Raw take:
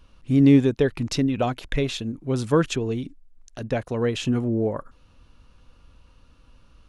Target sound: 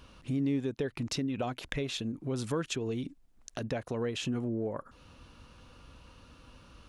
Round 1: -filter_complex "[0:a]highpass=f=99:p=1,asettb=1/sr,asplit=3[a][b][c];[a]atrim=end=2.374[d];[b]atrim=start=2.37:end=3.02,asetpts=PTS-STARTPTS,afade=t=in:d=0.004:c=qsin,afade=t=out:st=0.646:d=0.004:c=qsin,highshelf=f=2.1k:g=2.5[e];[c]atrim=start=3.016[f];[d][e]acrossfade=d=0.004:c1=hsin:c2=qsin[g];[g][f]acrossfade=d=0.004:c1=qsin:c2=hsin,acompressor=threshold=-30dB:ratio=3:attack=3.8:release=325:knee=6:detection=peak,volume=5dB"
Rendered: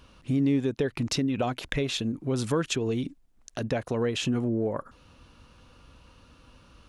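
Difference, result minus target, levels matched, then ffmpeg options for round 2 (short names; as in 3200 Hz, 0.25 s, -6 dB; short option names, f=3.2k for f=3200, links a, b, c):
compressor: peak gain reduction -6 dB
-filter_complex "[0:a]highpass=f=99:p=1,asettb=1/sr,asplit=3[a][b][c];[a]atrim=end=2.374[d];[b]atrim=start=2.37:end=3.02,asetpts=PTS-STARTPTS,afade=t=in:d=0.004:c=qsin,afade=t=out:st=0.646:d=0.004:c=qsin,highshelf=f=2.1k:g=2.5[e];[c]atrim=start=3.016[f];[d][e]acrossfade=d=0.004:c1=hsin:c2=qsin[g];[g][f]acrossfade=d=0.004:c1=qsin:c2=hsin,acompressor=threshold=-39dB:ratio=3:attack=3.8:release=325:knee=6:detection=peak,volume=5dB"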